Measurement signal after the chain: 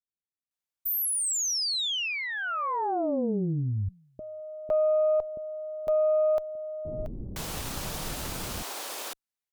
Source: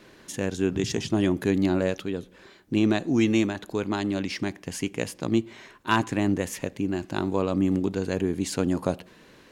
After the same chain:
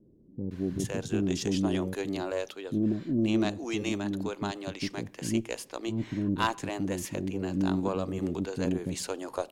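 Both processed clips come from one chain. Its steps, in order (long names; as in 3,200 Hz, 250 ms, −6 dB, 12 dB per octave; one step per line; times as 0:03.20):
multiband delay without the direct sound lows, highs 510 ms, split 380 Hz
harmonic generator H 2 −17 dB, 3 −44 dB, 6 −33 dB, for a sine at −8 dBFS
dynamic equaliser 1,900 Hz, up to −5 dB, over −44 dBFS, Q 1.5
level −2.5 dB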